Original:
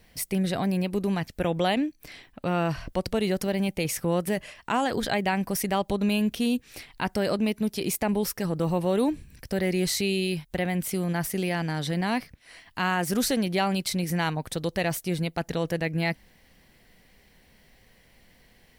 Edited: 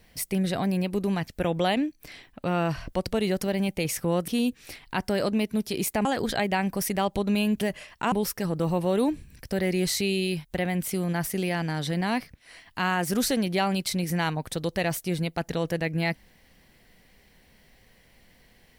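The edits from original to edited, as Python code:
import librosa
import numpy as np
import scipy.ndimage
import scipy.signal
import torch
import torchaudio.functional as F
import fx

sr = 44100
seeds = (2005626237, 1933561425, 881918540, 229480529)

y = fx.edit(x, sr, fx.swap(start_s=4.28, length_s=0.51, other_s=6.35, other_length_s=1.77), tone=tone)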